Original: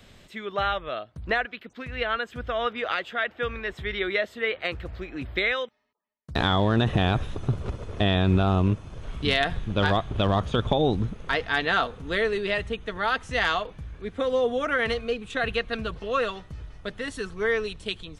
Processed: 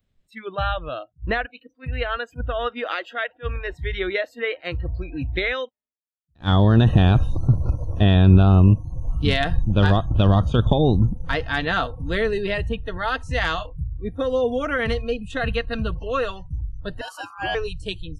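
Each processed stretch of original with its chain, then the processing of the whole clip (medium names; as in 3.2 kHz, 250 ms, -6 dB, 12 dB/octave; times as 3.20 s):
13.55–14.04 s: dynamic bell 570 Hz, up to -5 dB, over -41 dBFS, Q 0.7 + doubling 26 ms -8.5 dB
17.01–17.55 s: treble shelf 6.9 kHz +2.5 dB + ring modulator 1.2 kHz
whole clip: spectral noise reduction 28 dB; bass shelf 240 Hz +12 dB; attacks held to a fixed rise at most 400 dB/s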